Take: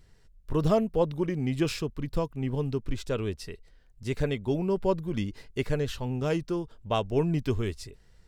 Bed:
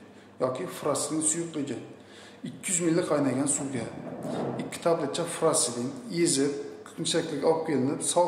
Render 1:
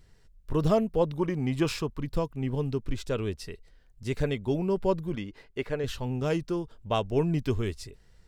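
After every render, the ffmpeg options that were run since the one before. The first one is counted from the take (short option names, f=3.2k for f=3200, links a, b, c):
-filter_complex "[0:a]asettb=1/sr,asplit=3[a][b][c];[a]atrim=end=1.194[d];[b]atrim=start=1.19:end=2.01,asetpts=PTS-STARTPTS,afade=t=in:d=0.004:c=qsin,afade=t=out:st=0.816:d=0.004:c=qsin,equalizer=f=1k:w=2:g=7.5[e];[c]atrim=start=2.006[f];[d][e]acrossfade=d=0.004:c1=hsin:c2=qsin[g];[g][f]acrossfade=d=0.004:c1=qsin:c2=hsin,asettb=1/sr,asplit=3[h][i][j];[h]atrim=end=5.154[k];[i]atrim=start=5.15:end=5.84,asetpts=PTS-STARTPTS,afade=t=in:d=0.004:c=qsin,afade=t=out:st=0.686:d=0.004:c=qsin,bass=f=250:g=-9,treble=f=4k:g=-11[l];[j]atrim=start=5.836[m];[k][l]acrossfade=d=0.004:c1=hsin:c2=qsin[n];[n][m]acrossfade=d=0.004:c1=qsin:c2=hsin"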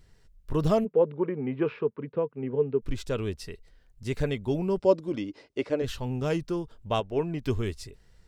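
-filter_complex "[0:a]asplit=3[a][b][c];[a]afade=t=out:st=0.84:d=0.02[d];[b]highpass=f=150:w=0.5412,highpass=f=150:w=1.3066,equalizer=f=170:t=q:w=4:g=-5,equalizer=f=310:t=q:w=4:g=-4,equalizer=f=440:t=q:w=4:g=10,equalizer=f=730:t=q:w=4:g=-6,equalizer=f=1.1k:t=q:w=4:g=-4,equalizer=f=1.9k:t=q:w=4:g=-4,lowpass=f=2.2k:w=0.5412,lowpass=f=2.2k:w=1.3066,afade=t=in:st=0.84:d=0.02,afade=t=out:st=2.81:d=0.02[e];[c]afade=t=in:st=2.81:d=0.02[f];[d][e][f]amix=inputs=3:normalize=0,asettb=1/sr,asplit=3[g][h][i];[g]atrim=end=4.794[j];[h]atrim=start=4.79:end=5.82,asetpts=PTS-STARTPTS,afade=t=in:d=0.004:c=qsin,afade=t=out:st=1.026:d=0.004:c=qsin,highpass=110,equalizer=f=160:t=q:w=4:g=-8,equalizer=f=300:t=q:w=4:g=9,equalizer=f=570:t=q:w=4:g=7,equalizer=f=1.7k:t=q:w=4:g=-5,equalizer=f=5.3k:t=q:w=4:g=7,lowpass=f=9.4k:w=0.5412,lowpass=f=9.4k:w=1.3066[k];[i]atrim=start=5.816[l];[j][k]acrossfade=d=0.004:c1=hsin:c2=qsin[m];[m][l]acrossfade=d=0.004:c1=qsin:c2=hsin,asettb=1/sr,asplit=3[n][o][p];[n]atrim=end=7.004[q];[o]atrim=start=7:end=7.43,asetpts=PTS-STARTPTS,afade=t=in:d=0.004:c=qsin,afade=t=out:st=0.426:d=0.004:c=qsin,bass=f=250:g=-8,treble=f=4k:g=-10[r];[p]atrim=start=7.426[s];[q][r]acrossfade=d=0.004:c1=hsin:c2=qsin[t];[t][s]acrossfade=d=0.004:c1=qsin:c2=hsin"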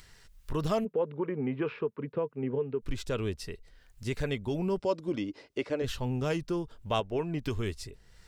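-filter_complex "[0:a]acrossover=split=930[a][b];[a]alimiter=limit=-23dB:level=0:latency=1:release=176[c];[b]acompressor=mode=upward:threshold=-49dB:ratio=2.5[d];[c][d]amix=inputs=2:normalize=0"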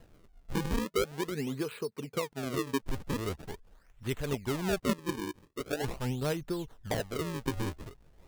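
-af "tremolo=f=5.1:d=0.41,acrusher=samples=37:mix=1:aa=0.000001:lfo=1:lforange=59.2:lforate=0.43"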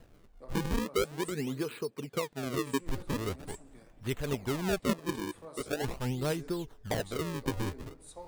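-filter_complex "[1:a]volume=-24dB[a];[0:a][a]amix=inputs=2:normalize=0"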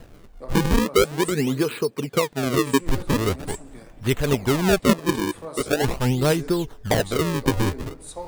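-af "volume=12dB"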